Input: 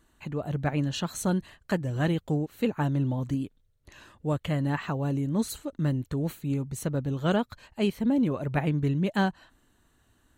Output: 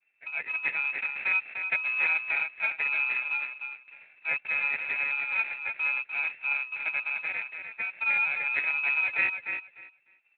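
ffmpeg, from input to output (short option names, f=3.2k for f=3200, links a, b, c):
-filter_complex "[0:a]agate=range=-33dB:threshold=-59dB:ratio=3:detection=peak,asettb=1/sr,asplit=3[a][b][c];[a]atrim=end=1.314[d];[b]atrim=start=1.31:end=2.31,asetpts=PTS-STARTPTS,afade=t=in:d=0.004:c=qsin,afade=t=out:st=0.996:d=0.004:c=qsin,lowshelf=f=190:g=4.5[e];[c]atrim=start=2.306[f];[d][e]acrossfade=d=0.004:c1=hsin:c2=qsin[g];[g][f]acrossfade=d=0.004:c1=qsin:c2=hsin,asplit=3[h][i][j];[h]afade=t=out:st=7.16:d=0.02[k];[i]acompressor=threshold=-28dB:ratio=5,afade=t=in:st=7.16:d=0.02,afade=t=out:st=7.9:d=0.02[l];[j]afade=t=in:st=7.9:d=0.02[m];[k][l][m]amix=inputs=3:normalize=0,acrusher=samples=28:mix=1:aa=0.000001,aecho=1:1:299|598|897:0.447|0.0804|0.0145,lowpass=f=2.3k:t=q:w=0.5098,lowpass=f=2.3k:t=q:w=0.6013,lowpass=f=2.3k:t=q:w=0.9,lowpass=f=2.3k:t=q:w=2.563,afreqshift=-2700,volume=-2dB" -ar 16000 -c:a libspeex -b:a 21k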